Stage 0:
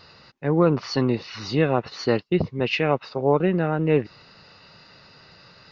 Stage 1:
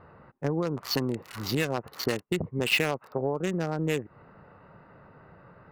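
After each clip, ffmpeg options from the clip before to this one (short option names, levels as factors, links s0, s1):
-filter_complex "[0:a]acrossover=split=1600[s0][s1];[s0]acompressor=threshold=0.0501:ratio=12[s2];[s1]acrusher=bits=4:mix=0:aa=0.5[s3];[s2][s3]amix=inputs=2:normalize=0,volume=1.19"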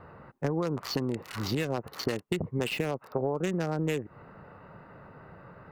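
-filter_complex "[0:a]acrossover=split=660|7400[s0][s1][s2];[s0]acompressor=threshold=0.0316:ratio=4[s3];[s1]acompressor=threshold=0.0126:ratio=4[s4];[s2]acompressor=threshold=0.002:ratio=4[s5];[s3][s4][s5]amix=inputs=3:normalize=0,volume=1.41"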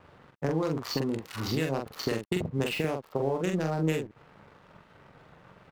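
-filter_complex "[0:a]aeval=exprs='sgn(val(0))*max(abs(val(0))-0.00266,0)':c=same,asplit=2[s0][s1];[s1]adelay=44,volume=0.631[s2];[s0][s2]amix=inputs=2:normalize=0"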